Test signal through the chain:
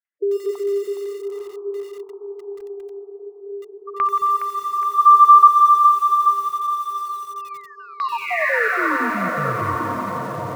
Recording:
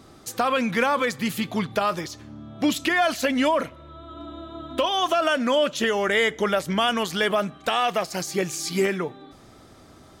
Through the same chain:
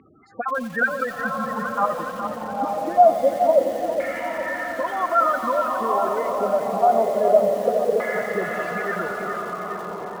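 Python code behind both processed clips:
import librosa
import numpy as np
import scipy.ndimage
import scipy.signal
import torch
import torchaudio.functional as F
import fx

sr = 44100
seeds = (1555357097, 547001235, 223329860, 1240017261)

p1 = fx.spec_dropout(x, sr, seeds[0], share_pct=29)
p2 = fx.lowpass(p1, sr, hz=3300.0, slope=6)
p3 = fx.spec_gate(p2, sr, threshold_db=-10, keep='strong')
p4 = fx.rider(p3, sr, range_db=4, speed_s=0.5)
p5 = p3 + F.gain(torch.from_numpy(p4), -0.5).numpy()
p6 = scipy.signal.sosfilt(scipy.signal.butter(4, 42.0, 'highpass', fs=sr, output='sos'), p5)
p7 = fx.low_shelf(p6, sr, hz=140.0, db=-10.5)
p8 = fx.echo_diffused(p7, sr, ms=908, feedback_pct=59, wet_db=-4.5)
p9 = fx.filter_lfo_lowpass(p8, sr, shape='saw_down', hz=0.25, low_hz=470.0, high_hz=2200.0, q=5.6)
p10 = fx.peak_eq(p9, sr, hz=360.0, db=-2.5, octaves=0.25)
p11 = p10 + fx.echo_split(p10, sr, split_hz=420.0, low_ms=215, high_ms=415, feedback_pct=52, wet_db=-8, dry=0)
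p12 = fx.echo_crushed(p11, sr, ms=88, feedback_pct=80, bits=4, wet_db=-14)
y = F.gain(torch.from_numpy(p12), -8.0).numpy()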